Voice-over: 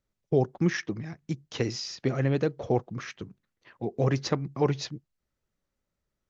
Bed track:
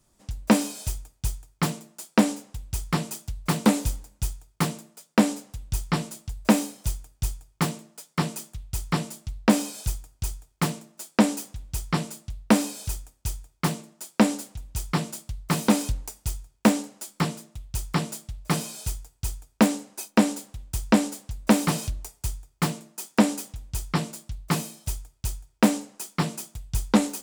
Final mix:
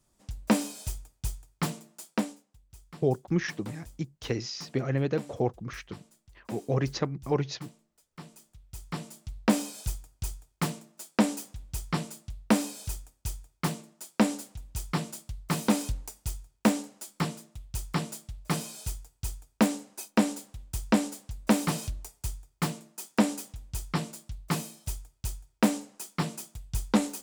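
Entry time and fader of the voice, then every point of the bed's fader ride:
2.70 s, -2.0 dB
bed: 2.09 s -5 dB
2.47 s -22.5 dB
8.05 s -22.5 dB
9.39 s -4.5 dB

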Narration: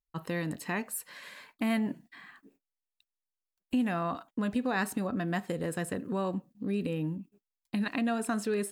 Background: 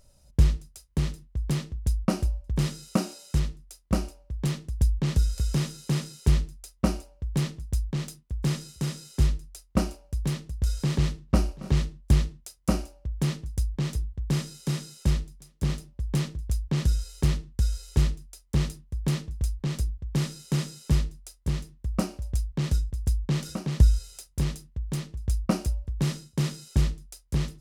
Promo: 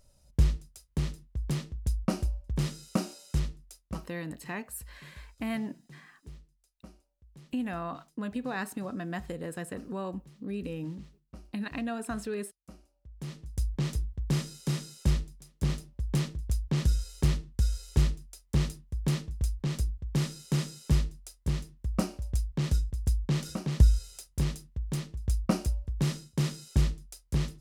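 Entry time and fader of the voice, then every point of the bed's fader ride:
3.80 s, -4.0 dB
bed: 3.76 s -4 dB
4.21 s -26.5 dB
12.78 s -26.5 dB
13.66 s -2 dB

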